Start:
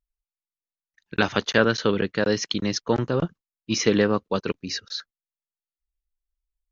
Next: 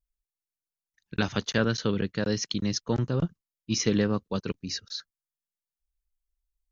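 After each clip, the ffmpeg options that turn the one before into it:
ffmpeg -i in.wav -af "bass=frequency=250:gain=10,treble=frequency=4000:gain=8,volume=-8.5dB" out.wav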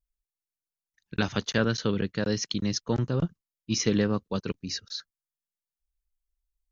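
ffmpeg -i in.wav -af anull out.wav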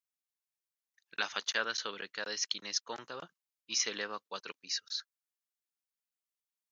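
ffmpeg -i in.wav -af "highpass=940,volume=-1.5dB" out.wav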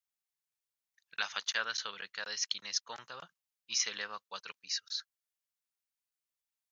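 ffmpeg -i in.wav -af "equalizer=frequency=320:width_type=o:width=1.4:gain=-13.5" out.wav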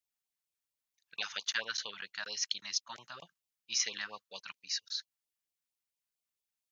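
ffmpeg -i in.wav -af "afftfilt=real='re*(1-between(b*sr/1024,380*pow(1700/380,0.5+0.5*sin(2*PI*4.4*pts/sr))/1.41,380*pow(1700/380,0.5+0.5*sin(2*PI*4.4*pts/sr))*1.41))':imag='im*(1-between(b*sr/1024,380*pow(1700/380,0.5+0.5*sin(2*PI*4.4*pts/sr))/1.41,380*pow(1700/380,0.5+0.5*sin(2*PI*4.4*pts/sr))*1.41))':win_size=1024:overlap=0.75" out.wav

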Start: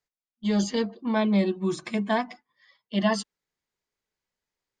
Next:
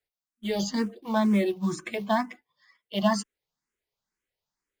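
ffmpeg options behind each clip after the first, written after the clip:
ffmpeg -i in.wav -filter_complex "[0:a]asplit=2[link_01][link_02];[link_02]acrusher=bits=4:mode=log:mix=0:aa=0.000001,volume=-6dB[link_03];[link_01][link_03]amix=inputs=2:normalize=0,asplit=2[link_04][link_05];[link_05]afreqshift=2.1[link_06];[link_04][link_06]amix=inputs=2:normalize=1,volume=-1.5dB" out.wav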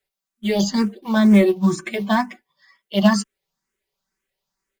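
ffmpeg -i in.wav -af "aecho=1:1:5.2:0.63,aeval=exprs='0.335*(cos(1*acos(clip(val(0)/0.335,-1,1)))-cos(1*PI/2))+0.0299*(cos(3*acos(clip(val(0)/0.335,-1,1)))-cos(3*PI/2))':channel_layout=same,volume=8dB" out.wav

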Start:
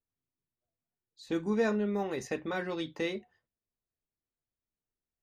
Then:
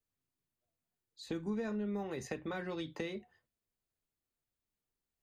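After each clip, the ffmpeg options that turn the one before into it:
ffmpeg -i in.wav -filter_complex "[0:a]bandreject=frequency=5600:width=15,acrossover=split=150[link_01][link_02];[link_02]acompressor=threshold=-39dB:ratio=6[link_03];[link_01][link_03]amix=inputs=2:normalize=0,volume=1.5dB" out.wav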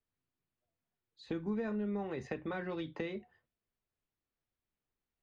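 ffmpeg -i in.wav -af "lowpass=3100,volume=1dB" out.wav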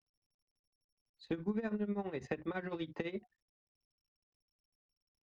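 ffmpeg -i in.wav -af "anlmdn=0.0001,tremolo=f=12:d=0.81,volume=2.5dB" -ar 44100 -c:a sbc -b:a 128k out.sbc

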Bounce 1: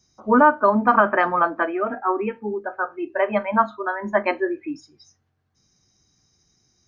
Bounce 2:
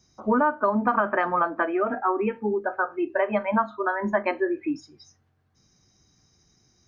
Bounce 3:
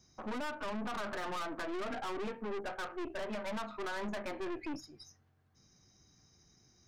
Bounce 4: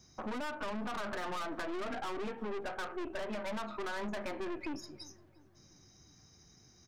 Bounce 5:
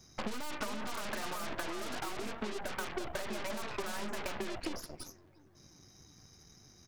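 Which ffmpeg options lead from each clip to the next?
ffmpeg -i in.wav -af "acompressor=threshold=-25dB:ratio=3,highshelf=frequency=4100:gain=-5.5,volume=3.5dB" out.wav
ffmpeg -i in.wav -af "alimiter=limit=-19.5dB:level=0:latency=1:release=120,aeval=exprs='(tanh(70.8*val(0)+0.6)-tanh(0.6))/70.8':channel_layout=same" out.wav
ffmpeg -i in.wav -filter_complex "[0:a]acompressor=threshold=-41dB:ratio=3,asplit=2[link_01][link_02];[link_02]adelay=348,lowpass=frequency=1700:poles=1,volume=-19dB,asplit=2[link_03][link_04];[link_04]adelay=348,lowpass=frequency=1700:poles=1,volume=0.5,asplit=2[link_05][link_06];[link_06]adelay=348,lowpass=frequency=1700:poles=1,volume=0.5,asplit=2[link_07][link_08];[link_08]adelay=348,lowpass=frequency=1700:poles=1,volume=0.5[link_09];[link_01][link_03][link_05][link_07][link_09]amix=inputs=5:normalize=0,volume=4.5dB" out.wav
ffmpeg -i in.wav -af "aeval=exprs='0.0335*(cos(1*acos(clip(val(0)/0.0335,-1,1)))-cos(1*PI/2))+0.015*(cos(6*acos(clip(val(0)/0.0335,-1,1)))-cos(6*PI/2))':channel_layout=same,volume=2.5dB" out.wav

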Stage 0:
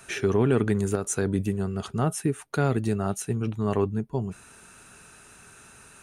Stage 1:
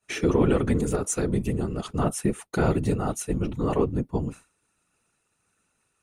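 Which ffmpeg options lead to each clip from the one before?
ffmpeg -i in.wav -af "agate=range=-33dB:threshold=-36dB:ratio=3:detection=peak,afftfilt=real='hypot(re,im)*cos(2*PI*random(0))':imag='hypot(re,im)*sin(2*PI*random(1))':win_size=512:overlap=0.75,bandreject=frequency=1600:width=9.4,volume=7dB" out.wav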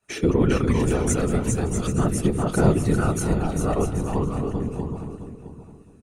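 ffmpeg -i in.wav -filter_complex "[0:a]asplit=2[link_01][link_02];[link_02]aecho=0:1:400|640|784|870.4|922.2:0.631|0.398|0.251|0.158|0.1[link_03];[link_01][link_03]amix=inputs=2:normalize=0,aphaser=in_gain=1:out_gain=1:delay=1.6:decay=0.35:speed=0.4:type=triangular,asplit=2[link_04][link_05];[link_05]adelay=665,lowpass=frequency=3300:poles=1,volume=-11dB,asplit=2[link_06][link_07];[link_07]adelay=665,lowpass=frequency=3300:poles=1,volume=0.2,asplit=2[link_08][link_09];[link_09]adelay=665,lowpass=frequency=3300:poles=1,volume=0.2[link_10];[link_06][link_08][link_10]amix=inputs=3:normalize=0[link_11];[link_04][link_11]amix=inputs=2:normalize=0" out.wav

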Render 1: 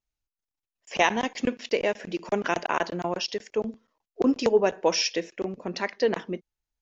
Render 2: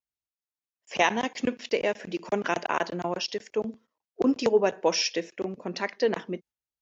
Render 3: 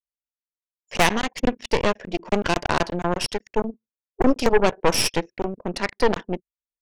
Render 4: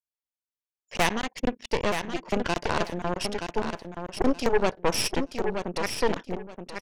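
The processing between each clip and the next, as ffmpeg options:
ffmpeg -i in.wav -af "highpass=83,agate=range=-7dB:threshold=-50dB:ratio=16:detection=peak,volume=-1dB" out.wav
ffmpeg -i in.wav -af "anlmdn=0.251,aeval=exprs='0.398*(cos(1*acos(clip(val(0)/0.398,-1,1)))-cos(1*PI/2))+0.0794*(cos(8*acos(clip(val(0)/0.398,-1,1)))-cos(8*PI/2))':channel_layout=same,volume=3dB" out.wav
ffmpeg -i in.wav -af "aecho=1:1:925|1850|2775:0.447|0.0938|0.0197,volume=-5.5dB" out.wav

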